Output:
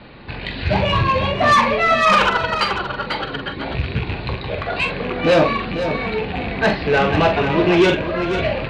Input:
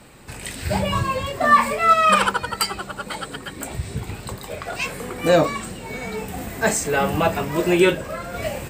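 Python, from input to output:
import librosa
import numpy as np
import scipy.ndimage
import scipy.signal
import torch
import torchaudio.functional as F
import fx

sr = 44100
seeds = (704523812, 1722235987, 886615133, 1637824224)

y = fx.rattle_buzz(x, sr, strikes_db=-31.0, level_db=-23.0)
y = scipy.signal.sosfilt(scipy.signal.butter(16, 4500.0, 'lowpass', fs=sr, output='sos'), y)
y = fx.notch(y, sr, hz=1300.0, q=16.0)
y = 10.0 ** (-15.0 / 20.0) * np.tanh(y / 10.0 ** (-15.0 / 20.0))
y = fx.echo_multitap(y, sr, ms=(44, 494), db=(-8.5, -9.0))
y = F.gain(torch.from_numpy(y), 6.0).numpy()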